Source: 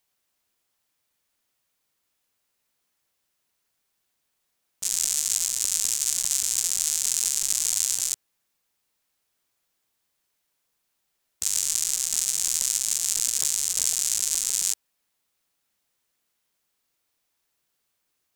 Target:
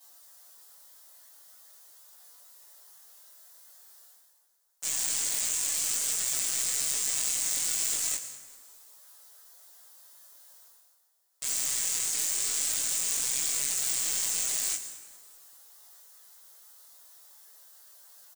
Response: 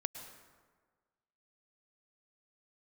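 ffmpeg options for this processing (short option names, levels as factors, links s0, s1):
-filter_complex "[0:a]highpass=f=490:w=0.5412,highpass=f=490:w=1.3066,equalizer=f=2600:w=2:g=-10,bandreject=f=2300:w=13,areverse,acompressor=mode=upward:threshold=0.00891:ratio=2.5,areverse,flanger=delay=15:depth=4.1:speed=0.44,aeval=exprs='0.0841*(abs(mod(val(0)/0.0841+3,4)-2)-1)':c=same,asplit=2[s0][s1];[s1]adelay=22,volume=0.631[s2];[s0][s2]amix=inputs=2:normalize=0,asplit=5[s3][s4][s5][s6][s7];[s4]adelay=200,afreqshift=140,volume=0.0708[s8];[s5]adelay=400,afreqshift=280,volume=0.0432[s9];[s6]adelay=600,afreqshift=420,volume=0.0263[s10];[s7]adelay=800,afreqshift=560,volume=0.016[s11];[s3][s8][s9][s10][s11]amix=inputs=5:normalize=0,asplit=2[s12][s13];[1:a]atrim=start_sample=2205,highshelf=f=4900:g=10,adelay=7[s14];[s13][s14]afir=irnorm=-1:irlink=0,volume=0.891[s15];[s12][s15]amix=inputs=2:normalize=0,volume=0.794"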